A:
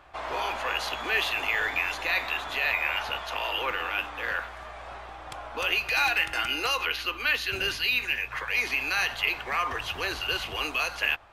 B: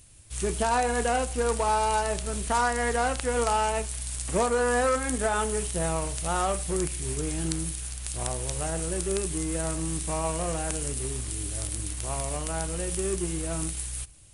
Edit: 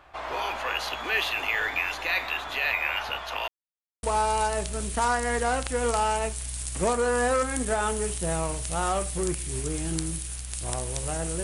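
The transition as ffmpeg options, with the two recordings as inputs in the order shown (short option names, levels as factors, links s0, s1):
-filter_complex "[0:a]apad=whole_dur=11.43,atrim=end=11.43,asplit=2[s0][s1];[s0]atrim=end=3.48,asetpts=PTS-STARTPTS,afade=t=out:st=3.476:d=0.004:c=hsin[s2];[s1]atrim=start=3.48:end=4.03,asetpts=PTS-STARTPTS,volume=0[s3];[1:a]atrim=start=1.56:end=8.96,asetpts=PTS-STARTPTS,afade=t=in:d=0.004:c=hsin[s4];[s2][s3][s4]concat=n=3:v=0:a=1"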